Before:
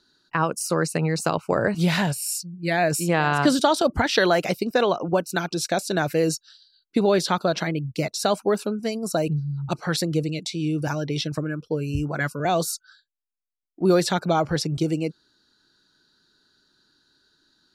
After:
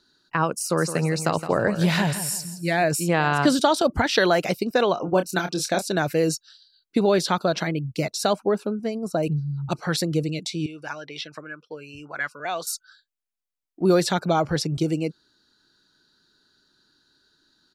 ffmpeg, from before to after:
ffmpeg -i in.wav -filter_complex "[0:a]asplit=3[link_01][link_02][link_03];[link_01]afade=type=out:start_time=0.77:duration=0.02[link_04];[link_02]aecho=1:1:166|332|498:0.282|0.0874|0.0271,afade=type=in:start_time=0.77:duration=0.02,afade=type=out:start_time=2.83:duration=0.02[link_05];[link_03]afade=type=in:start_time=2.83:duration=0.02[link_06];[link_04][link_05][link_06]amix=inputs=3:normalize=0,asettb=1/sr,asplit=3[link_07][link_08][link_09];[link_07]atrim=end=4.944[link_10];[link_08]atrim=start=4.94:end=5.85,asetpts=PTS-STARTPTS,afade=type=in:duration=0.004:curve=qsin,afade=type=out:start_time=0.906:duration=0.004:curve=qsin,asplit=2[link_11][link_12];[link_12]adelay=27,volume=-8dB[link_13];[link_11][link_13]amix=inputs=2:normalize=0,atrim=end_sample=40131[link_14];[link_09]atrim=start=5.846[link_15];[link_10][link_14]acrossfade=duration=0.004:curve1=hsin:curve2=qsin[link_16];[link_16][link_15]acrossfade=duration=0.004:curve1=qsin:curve2=hsin,asettb=1/sr,asplit=3[link_17][link_18][link_19];[link_17]atrim=end=8.334[link_20];[link_18]atrim=start=8.33:end=9.23,asetpts=PTS-STARTPTS,afade=type=in:duration=0.004:curve=qsin,afade=type=out:start_time=0.896:duration=0.004:curve=qsin,highshelf=frequency=2600:gain=-12[link_21];[link_19]atrim=start=9.226[link_22];[link_20][link_21]acrossfade=duration=0.004:curve1=hsin:curve2=qsin[link_23];[link_23][link_22]acrossfade=duration=0.004:curve1=qsin:curve2=hsin,asettb=1/sr,asplit=3[link_24][link_25][link_26];[link_24]atrim=end=10.664[link_27];[link_25]atrim=start=10.66:end=12.67,asetpts=PTS-STARTPTS,afade=type=in:duration=0.004:curve=qsin,afade=type=out:start_time=2.006:duration=0.004:curve=qsin,bandpass=frequency=1900:width_type=q:width=0.81[link_28];[link_26]atrim=start=12.666[link_29];[link_27][link_28]acrossfade=duration=0.004:curve1=hsin:curve2=qsin[link_30];[link_30][link_29]acrossfade=duration=0.004:curve1=qsin:curve2=hsin" out.wav

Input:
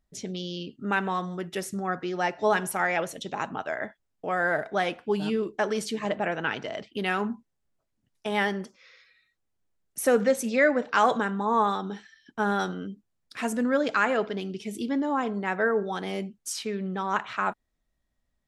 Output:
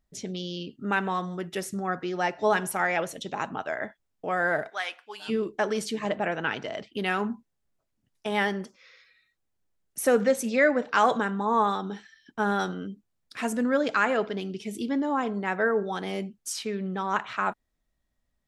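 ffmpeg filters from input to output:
ffmpeg -i in.wav -filter_complex "[0:a]asplit=3[link_01][link_02][link_03];[link_01]afade=type=out:start_time=4.69:duration=0.02[link_04];[link_02]highpass=1200,afade=type=in:start_time=4.69:duration=0.02,afade=type=out:start_time=5.28:duration=0.02[link_05];[link_03]afade=type=in:start_time=5.28:duration=0.02[link_06];[link_04][link_05][link_06]amix=inputs=3:normalize=0" out.wav

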